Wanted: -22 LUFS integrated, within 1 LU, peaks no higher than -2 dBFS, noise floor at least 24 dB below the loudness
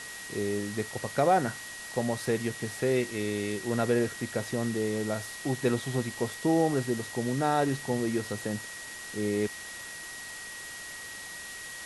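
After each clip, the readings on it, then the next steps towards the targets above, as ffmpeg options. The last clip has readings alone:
steady tone 1900 Hz; tone level -42 dBFS; noise floor -42 dBFS; noise floor target -55 dBFS; loudness -31.0 LUFS; peak -12.0 dBFS; loudness target -22.0 LUFS
-> -af "bandreject=f=1.9k:w=30"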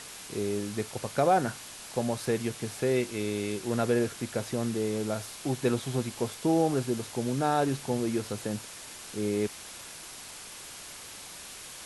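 steady tone none; noise floor -45 dBFS; noise floor target -54 dBFS
-> -af "afftdn=nr=9:nf=-45"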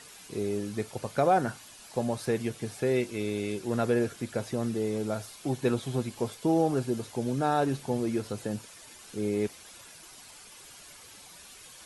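noise floor -50 dBFS; noise floor target -55 dBFS
-> -af "afftdn=nr=6:nf=-50"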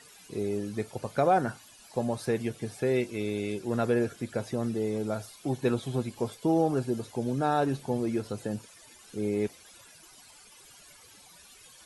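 noise floor -54 dBFS; noise floor target -55 dBFS
-> -af "afftdn=nr=6:nf=-54"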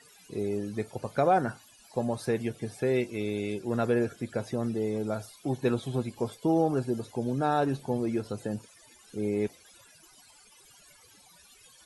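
noise floor -57 dBFS; loudness -30.5 LUFS; peak -12.5 dBFS; loudness target -22.0 LUFS
-> -af "volume=8.5dB"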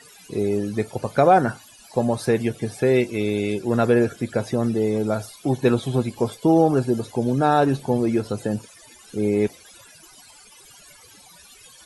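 loudness -22.0 LUFS; peak -4.0 dBFS; noise floor -49 dBFS

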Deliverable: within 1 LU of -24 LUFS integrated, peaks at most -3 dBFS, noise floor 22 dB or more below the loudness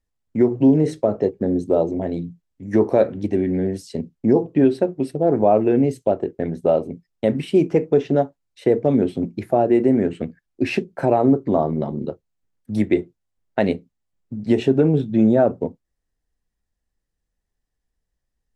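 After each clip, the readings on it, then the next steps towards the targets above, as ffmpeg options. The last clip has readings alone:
loudness -20.0 LUFS; peak -4.5 dBFS; loudness target -24.0 LUFS
-> -af "volume=-4dB"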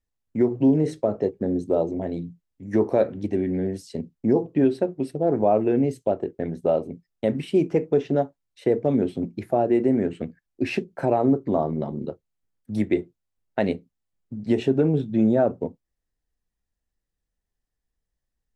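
loudness -24.0 LUFS; peak -8.5 dBFS; noise floor -82 dBFS

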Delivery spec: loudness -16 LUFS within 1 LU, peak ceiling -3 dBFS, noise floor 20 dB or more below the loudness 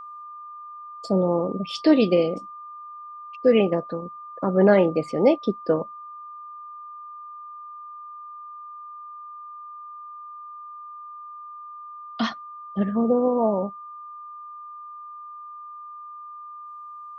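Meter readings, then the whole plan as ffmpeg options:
steady tone 1200 Hz; tone level -37 dBFS; loudness -22.5 LUFS; peak -6.0 dBFS; loudness target -16.0 LUFS
-> -af "bandreject=f=1.2k:w=30"
-af "volume=6.5dB,alimiter=limit=-3dB:level=0:latency=1"

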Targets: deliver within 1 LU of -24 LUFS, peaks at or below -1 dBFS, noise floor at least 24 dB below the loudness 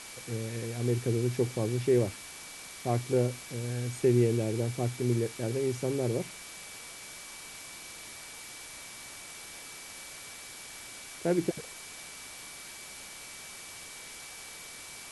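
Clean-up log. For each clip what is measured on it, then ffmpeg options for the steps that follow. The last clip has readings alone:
steady tone 2300 Hz; tone level -51 dBFS; noise floor -46 dBFS; noise floor target -58 dBFS; loudness -33.5 LUFS; peak -14.0 dBFS; loudness target -24.0 LUFS
-> -af "bandreject=f=2.3k:w=30"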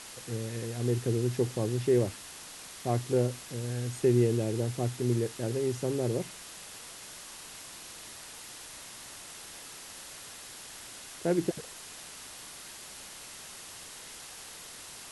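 steady tone none; noise floor -47 dBFS; noise floor target -58 dBFS
-> -af "afftdn=nr=11:nf=-47"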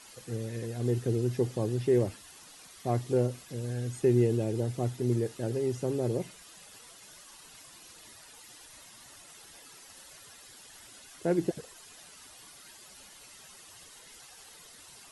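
noise floor -53 dBFS; noise floor target -55 dBFS
-> -af "afftdn=nr=6:nf=-53"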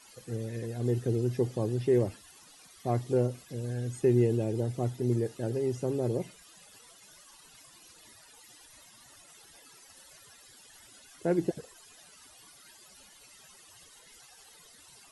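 noise floor -56 dBFS; loudness -30.5 LUFS; peak -14.5 dBFS; loudness target -24.0 LUFS
-> -af "volume=6.5dB"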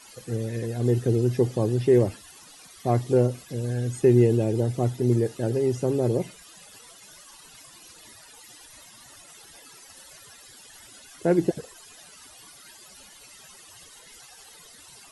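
loudness -24.0 LUFS; peak -8.0 dBFS; noise floor -50 dBFS

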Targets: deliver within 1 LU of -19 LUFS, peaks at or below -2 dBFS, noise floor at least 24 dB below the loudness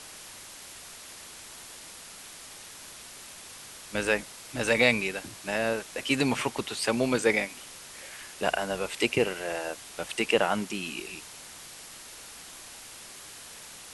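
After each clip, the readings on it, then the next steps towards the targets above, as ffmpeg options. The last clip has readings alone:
noise floor -46 dBFS; noise floor target -52 dBFS; loudness -28.0 LUFS; peak -8.0 dBFS; loudness target -19.0 LUFS
-> -af "afftdn=nr=6:nf=-46"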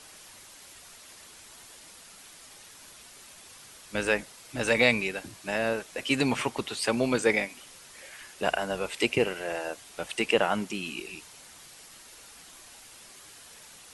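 noise floor -51 dBFS; noise floor target -53 dBFS
-> -af "afftdn=nr=6:nf=-51"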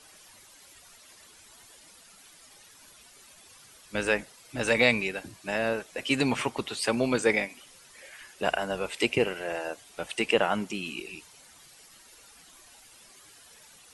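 noise floor -55 dBFS; loudness -28.5 LUFS; peak -8.0 dBFS; loudness target -19.0 LUFS
-> -af "volume=9.5dB,alimiter=limit=-2dB:level=0:latency=1"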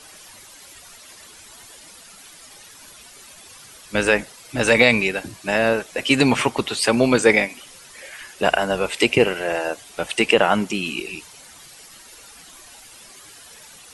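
loudness -19.5 LUFS; peak -2.0 dBFS; noise floor -45 dBFS

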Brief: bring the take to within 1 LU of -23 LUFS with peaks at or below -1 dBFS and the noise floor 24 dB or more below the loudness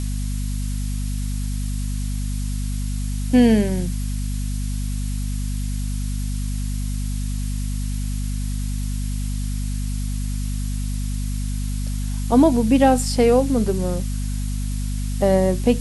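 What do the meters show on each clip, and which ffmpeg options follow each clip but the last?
hum 50 Hz; harmonics up to 250 Hz; hum level -22 dBFS; noise floor -24 dBFS; noise floor target -47 dBFS; loudness -23.0 LUFS; peak -3.5 dBFS; loudness target -23.0 LUFS
-> -af "bandreject=f=50:t=h:w=4,bandreject=f=100:t=h:w=4,bandreject=f=150:t=h:w=4,bandreject=f=200:t=h:w=4,bandreject=f=250:t=h:w=4"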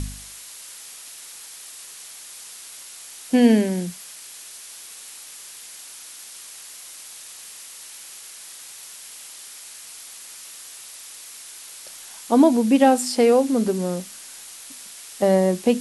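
hum none; noise floor -41 dBFS; noise floor target -43 dBFS
-> -af "afftdn=nr=6:nf=-41"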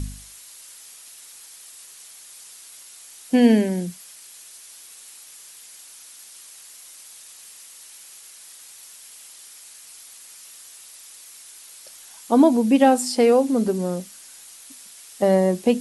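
noise floor -45 dBFS; loudness -19.0 LUFS; peak -4.0 dBFS; loudness target -23.0 LUFS
-> -af "volume=-4dB"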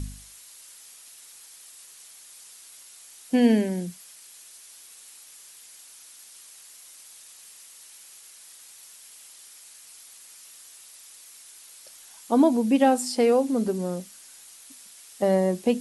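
loudness -23.0 LUFS; peak -8.0 dBFS; noise floor -49 dBFS

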